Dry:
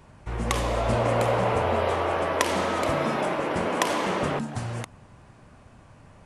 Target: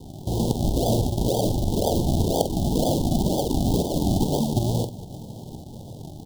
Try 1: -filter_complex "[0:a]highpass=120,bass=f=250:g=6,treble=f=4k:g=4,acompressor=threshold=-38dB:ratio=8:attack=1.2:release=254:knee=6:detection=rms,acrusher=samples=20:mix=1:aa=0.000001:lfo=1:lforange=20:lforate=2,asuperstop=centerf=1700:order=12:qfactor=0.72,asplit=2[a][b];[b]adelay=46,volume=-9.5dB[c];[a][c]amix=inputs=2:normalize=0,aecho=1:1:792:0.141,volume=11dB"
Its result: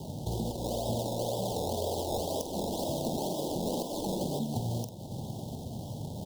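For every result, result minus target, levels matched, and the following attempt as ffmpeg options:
compressor: peak gain reduction +10 dB; decimation with a swept rate: distortion -11 dB; echo-to-direct +7 dB
-filter_complex "[0:a]highpass=120,bass=f=250:g=6,treble=f=4k:g=4,acompressor=threshold=-26.5dB:ratio=8:attack=1.2:release=254:knee=6:detection=rms,acrusher=samples=20:mix=1:aa=0.000001:lfo=1:lforange=20:lforate=2,asuperstop=centerf=1700:order=12:qfactor=0.72,asplit=2[a][b];[b]adelay=46,volume=-9.5dB[c];[a][c]amix=inputs=2:normalize=0,aecho=1:1:792:0.141,volume=11dB"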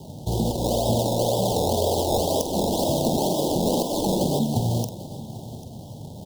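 decimation with a swept rate: distortion -11 dB; echo-to-direct +7 dB
-filter_complex "[0:a]highpass=120,bass=f=250:g=6,treble=f=4k:g=4,acompressor=threshold=-26.5dB:ratio=8:attack=1.2:release=254:knee=6:detection=rms,acrusher=samples=64:mix=1:aa=0.000001:lfo=1:lforange=64:lforate=2,asuperstop=centerf=1700:order=12:qfactor=0.72,asplit=2[a][b];[b]adelay=46,volume=-9.5dB[c];[a][c]amix=inputs=2:normalize=0,aecho=1:1:792:0.141,volume=11dB"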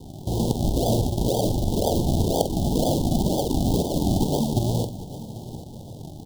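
echo-to-direct +7 dB
-filter_complex "[0:a]highpass=120,bass=f=250:g=6,treble=f=4k:g=4,acompressor=threshold=-26.5dB:ratio=8:attack=1.2:release=254:knee=6:detection=rms,acrusher=samples=64:mix=1:aa=0.000001:lfo=1:lforange=64:lforate=2,asuperstop=centerf=1700:order=12:qfactor=0.72,asplit=2[a][b];[b]adelay=46,volume=-9.5dB[c];[a][c]amix=inputs=2:normalize=0,aecho=1:1:792:0.0631,volume=11dB"

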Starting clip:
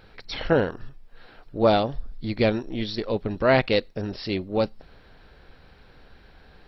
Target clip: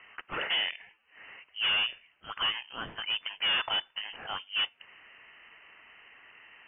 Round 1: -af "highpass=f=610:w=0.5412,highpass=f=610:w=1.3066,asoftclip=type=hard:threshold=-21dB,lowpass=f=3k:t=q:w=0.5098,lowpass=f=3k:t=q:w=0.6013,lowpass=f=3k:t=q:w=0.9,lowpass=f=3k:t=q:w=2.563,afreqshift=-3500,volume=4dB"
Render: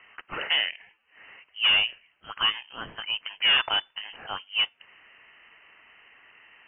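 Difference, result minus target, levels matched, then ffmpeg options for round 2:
hard clip: distortion -6 dB
-af "highpass=f=610:w=0.5412,highpass=f=610:w=1.3066,asoftclip=type=hard:threshold=-29.5dB,lowpass=f=3k:t=q:w=0.5098,lowpass=f=3k:t=q:w=0.6013,lowpass=f=3k:t=q:w=0.9,lowpass=f=3k:t=q:w=2.563,afreqshift=-3500,volume=4dB"

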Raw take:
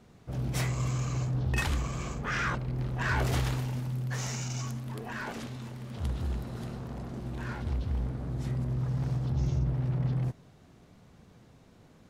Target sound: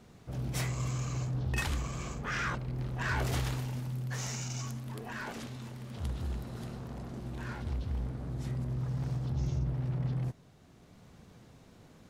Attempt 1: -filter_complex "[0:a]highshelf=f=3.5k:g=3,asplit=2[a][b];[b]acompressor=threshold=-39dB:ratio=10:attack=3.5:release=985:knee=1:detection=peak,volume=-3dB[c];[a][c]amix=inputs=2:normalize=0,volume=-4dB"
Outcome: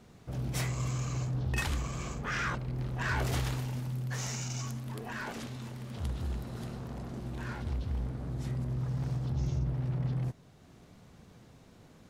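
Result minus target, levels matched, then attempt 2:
compressor: peak gain reduction -8 dB
-filter_complex "[0:a]highshelf=f=3.5k:g=3,asplit=2[a][b];[b]acompressor=threshold=-48dB:ratio=10:attack=3.5:release=985:knee=1:detection=peak,volume=-3dB[c];[a][c]amix=inputs=2:normalize=0,volume=-4dB"

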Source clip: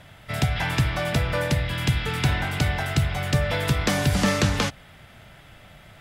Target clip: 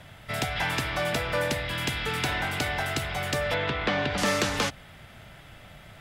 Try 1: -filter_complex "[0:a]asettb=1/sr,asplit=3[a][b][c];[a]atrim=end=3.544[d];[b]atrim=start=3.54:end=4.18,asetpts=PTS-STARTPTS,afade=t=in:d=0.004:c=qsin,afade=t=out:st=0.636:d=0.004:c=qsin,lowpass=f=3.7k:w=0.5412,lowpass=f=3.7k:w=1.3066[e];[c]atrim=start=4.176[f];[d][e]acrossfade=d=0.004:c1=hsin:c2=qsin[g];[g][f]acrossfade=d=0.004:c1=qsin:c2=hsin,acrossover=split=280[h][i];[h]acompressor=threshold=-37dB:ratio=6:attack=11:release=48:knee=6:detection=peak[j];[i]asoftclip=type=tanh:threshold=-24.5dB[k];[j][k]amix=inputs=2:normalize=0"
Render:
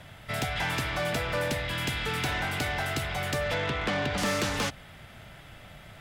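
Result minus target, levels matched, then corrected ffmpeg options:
soft clip: distortion +10 dB
-filter_complex "[0:a]asettb=1/sr,asplit=3[a][b][c];[a]atrim=end=3.544[d];[b]atrim=start=3.54:end=4.18,asetpts=PTS-STARTPTS,afade=t=in:d=0.004:c=qsin,afade=t=out:st=0.636:d=0.004:c=qsin,lowpass=f=3.7k:w=0.5412,lowpass=f=3.7k:w=1.3066[e];[c]atrim=start=4.176[f];[d][e]acrossfade=d=0.004:c1=hsin:c2=qsin[g];[g][f]acrossfade=d=0.004:c1=qsin:c2=hsin,acrossover=split=280[h][i];[h]acompressor=threshold=-37dB:ratio=6:attack=11:release=48:knee=6:detection=peak[j];[i]asoftclip=type=tanh:threshold=-15.5dB[k];[j][k]amix=inputs=2:normalize=0"

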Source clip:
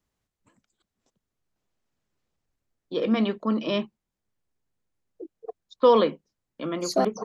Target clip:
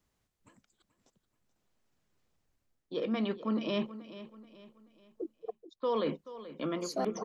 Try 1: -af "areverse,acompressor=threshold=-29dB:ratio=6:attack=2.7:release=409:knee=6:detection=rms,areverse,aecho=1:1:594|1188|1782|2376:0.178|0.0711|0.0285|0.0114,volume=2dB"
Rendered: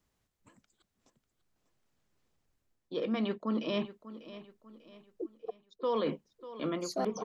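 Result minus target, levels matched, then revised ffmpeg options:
echo 0.163 s late
-af "areverse,acompressor=threshold=-29dB:ratio=6:attack=2.7:release=409:knee=6:detection=rms,areverse,aecho=1:1:431|862|1293|1724:0.178|0.0711|0.0285|0.0114,volume=2dB"

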